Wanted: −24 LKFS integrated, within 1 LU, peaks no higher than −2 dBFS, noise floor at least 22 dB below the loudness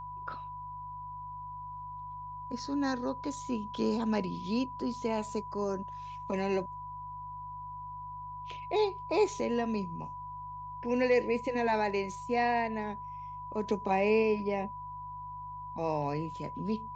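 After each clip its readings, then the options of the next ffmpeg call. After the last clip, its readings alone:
mains hum 50 Hz; hum harmonics up to 150 Hz; level of the hum −50 dBFS; interfering tone 990 Hz; level of the tone −40 dBFS; integrated loudness −34.0 LKFS; sample peak −16.5 dBFS; target loudness −24.0 LKFS
→ -af "bandreject=frequency=50:width_type=h:width=4,bandreject=frequency=100:width_type=h:width=4,bandreject=frequency=150:width_type=h:width=4"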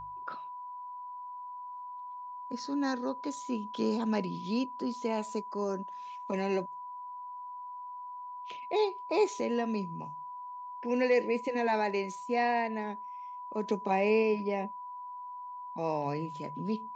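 mains hum none found; interfering tone 990 Hz; level of the tone −40 dBFS
→ -af "bandreject=frequency=990:width=30"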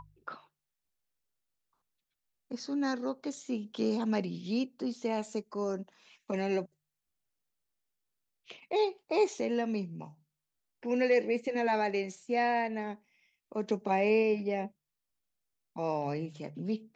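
interfering tone none found; integrated loudness −32.5 LKFS; sample peak −16.5 dBFS; target loudness −24.0 LKFS
→ -af "volume=8.5dB"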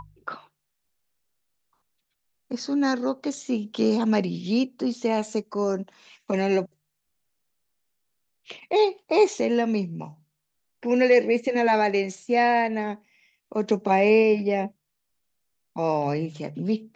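integrated loudness −24.0 LKFS; sample peak −8.0 dBFS; background noise floor −78 dBFS

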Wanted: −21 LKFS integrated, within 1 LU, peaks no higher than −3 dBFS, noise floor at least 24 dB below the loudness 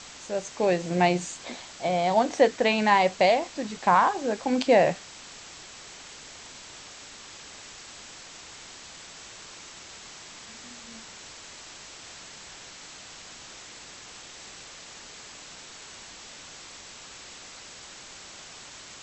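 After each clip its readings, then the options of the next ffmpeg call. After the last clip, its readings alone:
background noise floor −46 dBFS; target noise floor −48 dBFS; integrated loudness −24.0 LKFS; sample peak −7.5 dBFS; target loudness −21.0 LKFS
→ -af "afftdn=noise_reduction=6:noise_floor=-46"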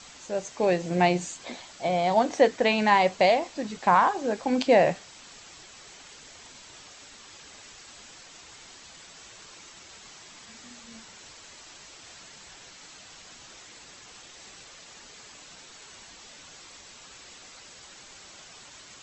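background noise floor −49 dBFS; integrated loudness −24.0 LKFS; sample peak −7.5 dBFS; target loudness −21.0 LKFS
→ -af "volume=3dB"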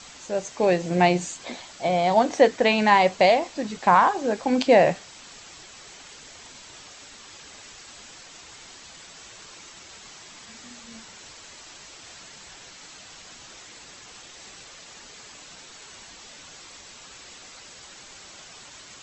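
integrated loudness −21.0 LKFS; sample peak −4.5 dBFS; background noise floor −46 dBFS

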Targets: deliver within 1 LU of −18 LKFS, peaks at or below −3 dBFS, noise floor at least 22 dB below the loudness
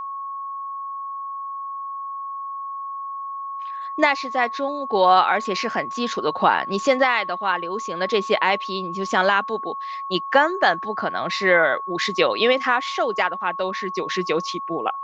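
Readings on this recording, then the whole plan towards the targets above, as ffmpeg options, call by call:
interfering tone 1,100 Hz; level of the tone −28 dBFS; integrated loudness −22.5 LKFS; sample peak −3.5 dBFS; target loudness −18.0 LKFS
→ -af "bandreject=frequency=1100:width=30"
-af "volume=4.5dB,alimiter=limit=-3dB:level=0:latency=1"

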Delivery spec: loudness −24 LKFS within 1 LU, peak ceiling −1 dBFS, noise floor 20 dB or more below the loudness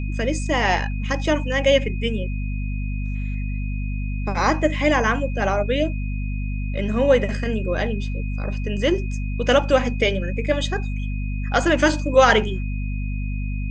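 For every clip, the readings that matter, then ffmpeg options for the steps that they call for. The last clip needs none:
mains hum 50 Hz; hum harmonics up to 250 Hz; level of the hum −23 dBFS; interfering tone 2,500 Hz; level of the tone −39 dBFS; integrated loudness −22.0 LKFS; sample peak −2.0 dBFS; target loudness −24.0 LKFS
→ -af "bandreject=frequency=50:width_type=h:width=6,bandreject=frequency=100:width_type=h:width=6,bandreject=frequency=150:width_type=h:width=6,bandreject=frequency=200:width_type=h:width=6,bandreject=frequency=250:width_type=h:width=6"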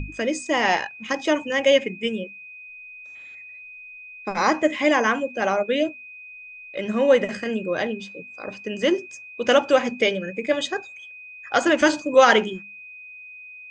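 mains hum none found; interfering tone 2,500 Hz; level of the tone −39 dBFS
→ -af "bandreject=frequency=2500:width=30"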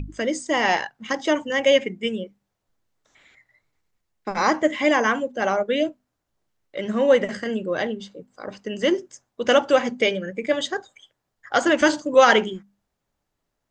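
interfering tone none found; integrated loudness −21.5 LKFS; sample peak −3.0 dBFS; target loudness −24.0 LKFS
→ -af "volume=-2.5dB"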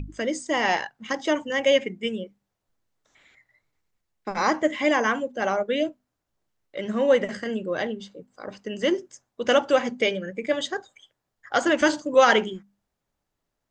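integrated loudness −24.0 LKFS; sample peak −5.5 dBFS; background noise floor −82 dBFS

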